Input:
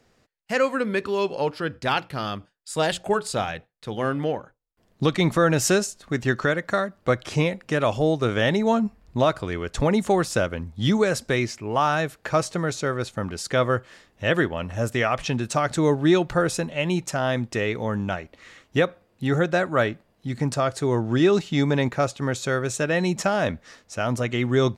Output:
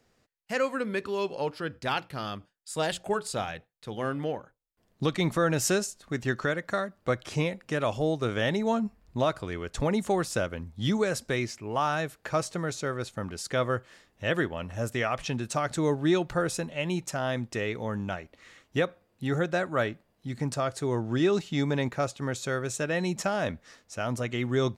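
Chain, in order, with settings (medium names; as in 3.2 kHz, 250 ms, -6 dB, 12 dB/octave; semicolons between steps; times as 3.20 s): treble shelf 8.5 kHz +4.5 dB; trim -6 dB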